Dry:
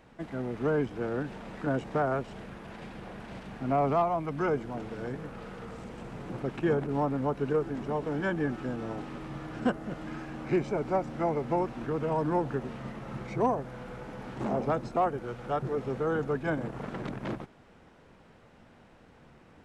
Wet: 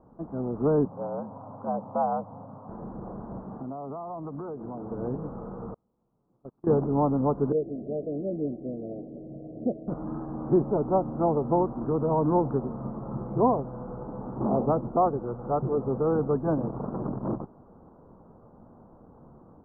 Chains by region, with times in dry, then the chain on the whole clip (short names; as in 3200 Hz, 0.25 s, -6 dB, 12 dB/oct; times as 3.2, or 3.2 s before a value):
0.85–2.69 frequency shift +73 Hz + fixed phaser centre 840 Hz, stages 4
3.44–4.91 HPF 130 Hz 6 dB/oct + compressor 12:1, threshold -37 dBFS
5.74–6.67 gate -29 dBFS, range -38 dB + compressor 5:1, threshold -42 dBFS + bell 2800 Hz +6 dB 2.2 oct
7.52–9.88 steep low-pass 680 Hz 96 dB/oct + tilt +3 dB/oct
whole clip: steep low-pass 1200 Hz 48 dB/oct; bell 230 Hz +2.5 dB 1.7 oct; AGC gain up to 3.5 dB